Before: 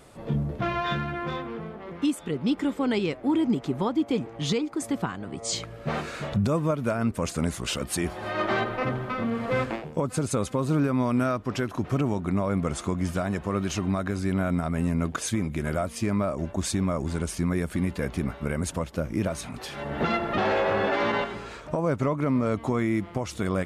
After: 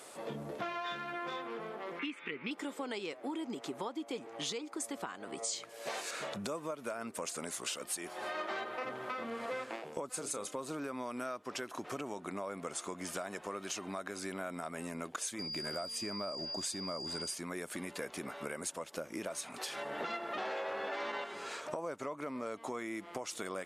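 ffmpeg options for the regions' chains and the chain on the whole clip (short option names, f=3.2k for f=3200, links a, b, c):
-filter_complex "[0:a]asettb=1/sr,asplit=3[a][b][c];[a]atrim=end=1.994[d];[b]atrim=start=1.99:end=2.51,asetpts=PTS-STARTPTS,afade=t=in:d=0.004:c=qsin,afade=t=out:st=0.516:d=0.004:c=qsin,lowpass=f=2.3k:t=q:w=5.4,equalizer=f=670:w=2:g=-13.5[e];[c]atrim=start=2.506[f];[d][e]acrossfade=d=0.004:c1=hsin:c2=qsin[g];[g][f]acrossfade=d=0.004:c1=qsin:c2=hsin,asettb=1/sr,asplit=3[h][i][j];[h]atrim=end=5.694[k];[i]atrim=start=5.69:end=6.11,asetpts=PTS-STARTPTS,afade=t=in:d=0.004:c=qsin,afade=t=out:st=0.416:d=0.004:c=qsin,bass=f=250:g=-14,treble=f=4k:g=10,bandreject=f=1.3k:w=5.8[l];[j]atrim=start=6.106[m];[k][l]acrossfade=d=0.004:c1=hsin:c2=qsin[n];[n][m]acrossfade=d=0.004:c1=qsin:c2=hsin,asettb=1/sr,asplit=3[o][p][q];[o]atrim=end=10.124[r];[p]atrim=start=10.12:end=10.53,asetpts=PTS-STARTPTS,afade=t=in:d=0.004:c=qsin,afade=t=out:st=0.406:d=0.004:c=qsin,bandreject=f=60:t=h:w=6,bandreject=f=120:t=h:w=6,bandreject=f=180:t=h:w=6,bandreject=f=240:t=h:w=6,bandreject=f=300:t=h:w=6,bandreject=f=360:t=h:w=6,bandreject=f=420:t=h:w=6,bandreject=f=480:t=h:w=6,bandreject=f=540:t=h:w=6,bandreject=f=600:t=h:w=6,asplit=2[s][t];[t]adelay=30,volume=-11dB[u];[s][u]amix=inputs=2:normalize=0,atrim=end_sample=18081[v];[q]atrim=start=10.526[w];[r][v]acrossfade=d=0.004:c1=hsin:c2=qsin[x];[x][w]acrossfade=d=0.004:c1=qsin:c2=hsin,asettb=1/sr,asplit=3[y][z][aa];[y]atrim=end=15.394[ab];[z]atrim=start=15.39:end=17.34,asetpts=PTS-STARTPTS,afade=t=in:d=0.004:c=qsin,afade=t=out:st=1.946:d=0.004:c=qsin,lowshelf=f=220:g=9.5,aeval=exprs='val(0)+0.02*sin(2*PI*4800*n/s)':c=same[ac];[aa]atrim=start=17.336[ad];[ab][ac]acrossfade=d=0.004:c1=hsin:c2=qsin[ae];[ae][ad]acrossfade=d=0.004:c1=qsin:c2=hsin,highpass=410,equalizer=f=8.7k:t=o:w=1.6:g=6.5,acompressor=threshold=-39dB:ratio=4,volume=1dB"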